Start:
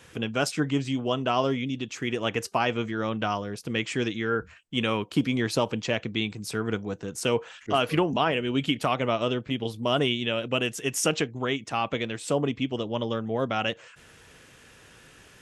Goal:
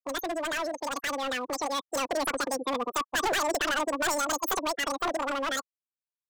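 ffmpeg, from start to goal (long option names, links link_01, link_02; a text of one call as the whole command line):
ffmpeg -i in.wav -filter_complex "[0:a]asetrate=108045,aresample=44100,afftfilt=real='re*gte(hypot(re,im),0.0447)':imag='im*gte(hypot(re,im),0.0447)':win_size=1024:overlap=0.75,acrossover=split=110[link_01][link_02];[link_02]asoftclip=type=hard:threshold=-28.5dB[link_03];[link_01][link_03]amix=inputs=2:normalize=0,dynaudnorm=framelen=730:gausssize=5:maxgain=4dB" out.wav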